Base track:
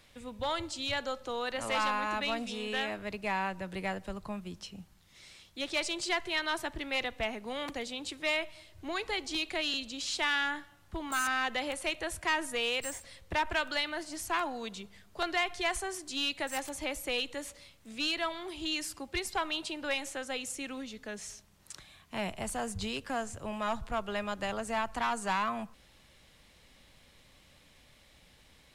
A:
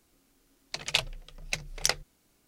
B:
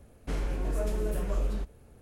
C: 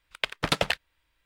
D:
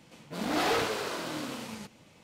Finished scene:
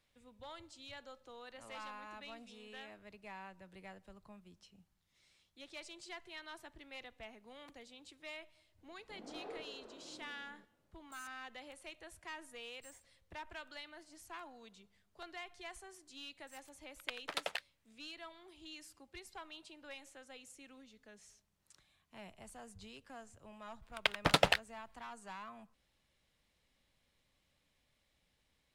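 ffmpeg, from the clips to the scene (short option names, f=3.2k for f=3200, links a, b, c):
-filter_complex "[3:a]asplit=2[a][b];[0:a]volume=-17.5dB[c];[4:a]bandpass=f=410:t=q:w=0.99:csg=0[d];[a]highpass=440[e];[b]equalizer=f=760:w=1.5:g=3.5[f];[d]atrim=end=2.23,asetpts=PTS-STARTPTS,volume=-17dB,afade=t=in:d=0.004:c=hsin,afade=t=out:st=2.226:d=0.004:c=hsin,adelay=8780[g];[e]atrim=end=1.25,asetpts=PTS-STARTPTS,volume=-13.5dB,afade=t=in:d=0.004:c=hsin,afade=t=out:st=1.246:d=0.004:c=hsin,adelay=16850[h];[f]atrim=end=1.25,asetpts=PTS-STARTPTS,volume=-4dB,afade=t=in:d=0.004:c=hsin,afade=t=out:st=1.246:d=0.004:c=hsin,adelay=23820[i];[c][g][h][i]amix=inputs=4:normalize=0"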